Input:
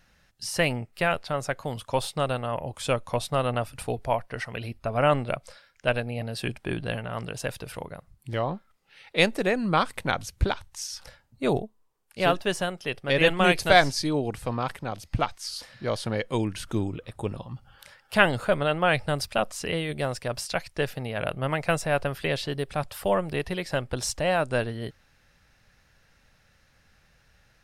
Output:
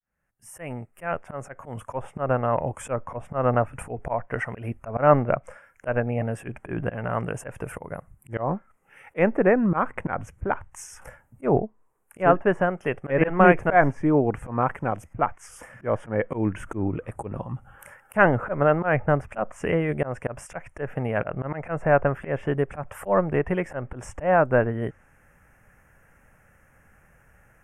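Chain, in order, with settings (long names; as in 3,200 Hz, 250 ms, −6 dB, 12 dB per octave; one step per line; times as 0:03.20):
fade in at the beginning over 2.13 s
treble cut that deepens with the level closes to 2,000 Hz, closed at −23 dBFS
Butterworth band-reject 4,200 Hz, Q 0.66
low-shelf EQ 130 Hz −3.5 dB
volume swells 136 ms
level +7 dB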